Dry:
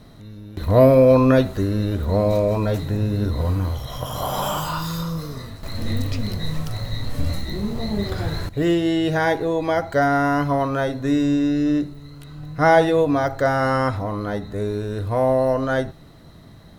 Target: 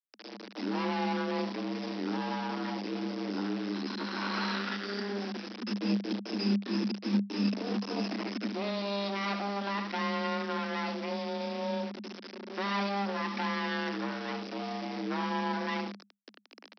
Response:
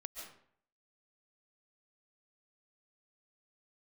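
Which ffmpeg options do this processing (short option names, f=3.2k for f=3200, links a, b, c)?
-filter_complex "[0:a]acrossover=split=200[a][b];[b]asoftclip=type=hard:threshold=-16dB[c];[a][c]amix=inputs=2:normalize=0,asetrate=53981,aresample=44100,atempo=0.816958,acompressor=threshold=-23dB:ratio=4,equalizer=f=300:w=0.35:g=-7.5,aecho=1:1:75:0.335,aresample=11025,acrusher=bits=4:dc=4:mix=0:aa=0.000001,aresample=44100,afreqshift=200"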